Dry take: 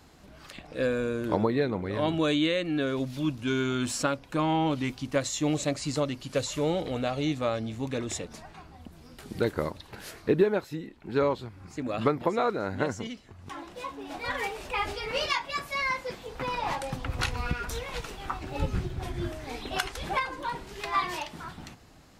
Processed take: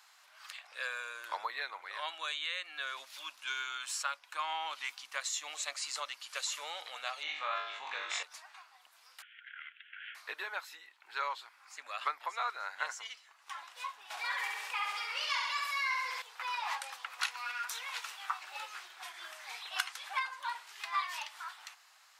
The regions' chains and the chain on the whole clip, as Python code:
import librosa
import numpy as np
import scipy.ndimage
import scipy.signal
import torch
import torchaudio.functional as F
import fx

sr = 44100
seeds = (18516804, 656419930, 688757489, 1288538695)

y = fx.chain(x, sr, fx.lowpass(hz=2900.0, slope=12),
    fx.room_flutter(wall_m=3.5, rt60_s=0.46),
    fx.env_flatten(amount_pct=50), at=(7.23, 8.23))
y = fx.chain(y, sr, fx.cvsd(bps=32000),
    fx.cheby1_bandpass(low_hz=1400.0, high_hz=3300.0, order=5),
    fx.over_compress(threshold_db=-45.0, ratio=-0.5), at=(9.22, 10.15))
y = fx.chain(y, sr, fx.peak_eq(hz=400.0, db=5.0, octaves=0.72),
    fx.room_flutter(wall_m=11.6, rt60_s=0.93),
    fx.env_flatten(amount_pct=50), at=(14.1, 16.22))
y = scipy.signal.sosfilt(scipy.signal.butter(4, 1000.0, 'highpass', fs=sr, output='sos'), y)
y = fx.rider(y, sr, range_db=3, speed_s=0.5)
y = F.gain(torch.from_numpy(y), -3.5).numpy()